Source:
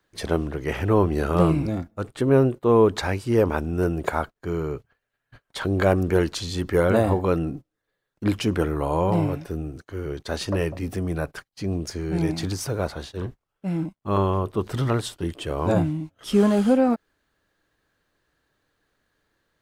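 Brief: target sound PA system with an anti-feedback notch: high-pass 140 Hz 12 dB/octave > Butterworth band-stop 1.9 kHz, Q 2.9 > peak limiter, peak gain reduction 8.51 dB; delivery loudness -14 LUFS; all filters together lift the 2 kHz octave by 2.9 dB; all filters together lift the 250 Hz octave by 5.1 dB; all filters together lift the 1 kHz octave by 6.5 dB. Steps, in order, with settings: high-pass 140 Hz 12 dB/octave; Butterworth band-stop 1.9 kHz, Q 2.9; peaking EQ 250 Hz +7 dB; peaking EQ 1 kHz +6.5 dB; peaking EQ 2 kHz +4.5 dB; trim +9 dB; peak limiter -0.5 dBFS

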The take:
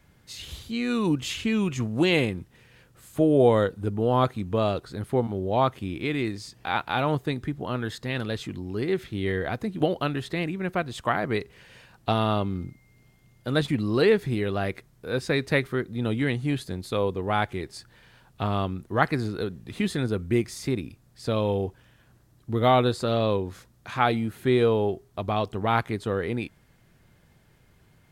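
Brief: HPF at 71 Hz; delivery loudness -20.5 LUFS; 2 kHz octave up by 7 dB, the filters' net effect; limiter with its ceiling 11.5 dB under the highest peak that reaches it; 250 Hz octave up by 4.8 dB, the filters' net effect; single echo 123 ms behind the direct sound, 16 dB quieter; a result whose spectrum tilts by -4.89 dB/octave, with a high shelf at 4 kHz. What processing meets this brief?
high-pass 71 Hz; peaking EQ 250 Hz +6 dB; peaking EQ 2 kHz +7.5 dB; treble shelf 4 kHz +4.5 dB; peak limiter -12 dBFS; delay 123 ms -16 dB; trim +5 dB

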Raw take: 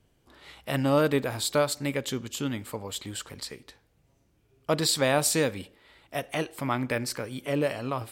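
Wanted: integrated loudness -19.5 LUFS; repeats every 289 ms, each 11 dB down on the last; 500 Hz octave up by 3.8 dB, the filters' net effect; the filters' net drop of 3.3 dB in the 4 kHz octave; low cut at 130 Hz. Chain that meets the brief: high-pass 130 Hz; peaking EQ 500 Hz +4.5 dB; peaking EQ 4 kHz -4 dB; feedback delay 289 ms, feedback 28%, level -11 dB; trim +7 dB

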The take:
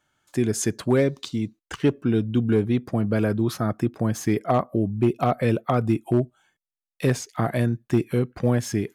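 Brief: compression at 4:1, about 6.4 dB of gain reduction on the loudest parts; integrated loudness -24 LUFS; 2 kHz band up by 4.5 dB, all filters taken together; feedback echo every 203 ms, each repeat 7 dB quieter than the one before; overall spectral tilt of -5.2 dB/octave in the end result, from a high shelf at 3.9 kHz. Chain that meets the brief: peaking EQ 2 kHz +4 dB; treble shelf 3.9 kHz +7 dB; compression 4:1, threshold -23 dBFS; feedback delay 203 ms, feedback 45%, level -7 dB; trim +3.5 dB

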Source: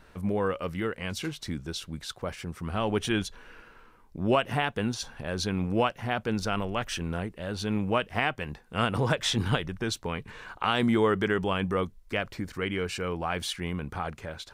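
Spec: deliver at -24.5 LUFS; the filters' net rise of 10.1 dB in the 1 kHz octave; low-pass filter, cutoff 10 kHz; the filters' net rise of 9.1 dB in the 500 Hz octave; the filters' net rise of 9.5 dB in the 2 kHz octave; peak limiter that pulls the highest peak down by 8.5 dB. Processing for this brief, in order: low-pass 10 kHz; peaking EQ 500 Hz +8.5 dB; peaking EQ 1 kHz +8 dB; peaking EQ 2 kHz +9 dB; peak limiter -9 dBFS

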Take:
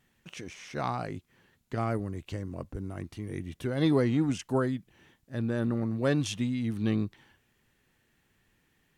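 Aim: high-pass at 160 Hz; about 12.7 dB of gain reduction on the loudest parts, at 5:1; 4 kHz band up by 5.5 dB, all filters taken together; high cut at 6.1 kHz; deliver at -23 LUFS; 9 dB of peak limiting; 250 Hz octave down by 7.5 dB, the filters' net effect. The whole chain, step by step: high-pass 160 Hz; low-pass 6.1 kHz; peaking EQ 250 Hz -8.5 dB; peaking EQ 4 kHz +7.5 dB; compression 5:1, threshold -39 dBFS; trim +22.5 dB; peak limiter -11 dBFS

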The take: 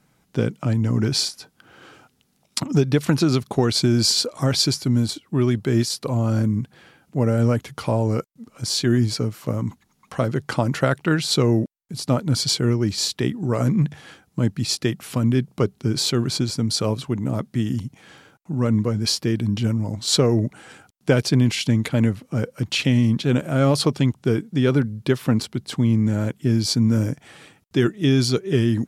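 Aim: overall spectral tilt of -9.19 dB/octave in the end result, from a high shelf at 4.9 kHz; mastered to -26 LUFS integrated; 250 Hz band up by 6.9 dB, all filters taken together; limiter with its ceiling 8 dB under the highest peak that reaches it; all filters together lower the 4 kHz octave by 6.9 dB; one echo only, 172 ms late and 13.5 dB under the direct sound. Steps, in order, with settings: peaking EQ 250 Hz +8 dB; peaking EQ 4 kHz -6 dB; treble shelf 4.9 kHz -4.5 dB; peak limiter -8.5 dBFS; delay 172 ms -13.5 dB; trim -6.5 dB

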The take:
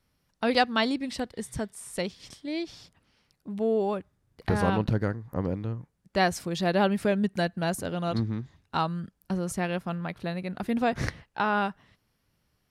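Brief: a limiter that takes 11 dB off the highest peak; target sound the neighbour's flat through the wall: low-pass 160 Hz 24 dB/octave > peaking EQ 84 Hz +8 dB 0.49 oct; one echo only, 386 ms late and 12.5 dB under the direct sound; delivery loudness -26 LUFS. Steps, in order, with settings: peak limiter -21 dBFS; low-pass 160 Hz 24 dB/octave; peaking EQ 84 Hz +8 dB 0.49 oct; delay 386 ms -12.5 dB; trim +12.5 dB

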